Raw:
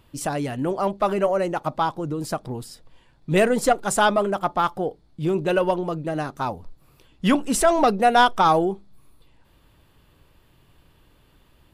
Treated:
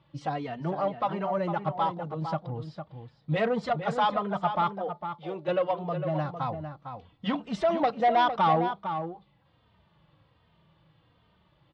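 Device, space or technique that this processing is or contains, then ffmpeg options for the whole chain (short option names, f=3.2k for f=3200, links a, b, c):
barber-pole flanger into a guitar amplifier: -filter_complex "[0:a]asettb=1/sr,asplit=3[a][b][c];[a]atrim=end=4.764[d];[b]atrim=start=4.76:end=5.48,asetpts=PTS-STARTPTS,afade=t=in:d=0.004:c=qsin,afade=t=out:st=0.716:d=0.004:c=qsin,highpass=450[e];[c]atrim=start=5.476[f];[d][e]acrossfade=d=0.004:c1=hsin:c2=qsin[g];[g][f]acrossfade=d=0.004:c1=qsin:c2=hsin,asplit=2[h][i];[i]adelay=3,afreqshift=-1.3[j];[h][j]amix=inputs=2:normalize=1,asoftclip=type=tanh:threshold=-16dB,highpass=98,equalizer=f=160:t=q:w=4:g=4,equalizer=f=260:t=q:w=4:g=-9,equalizer=f=390:t=q:w=4:g=-9,equalizer=f=1.6k:t=q:w=4:g=-5,equalizer=f=2.6k:t=q:w=4:g=-6,lowpass=f=3.8k:w=0.5412,lowpass=f=3.8k:w=1.3066,asplit=2[k][l];[l]adelay=454.8,volume=-8dB,highshelf=f=4k:g=-10.2[m];[k][m]amix=inputs=2:normalize=0"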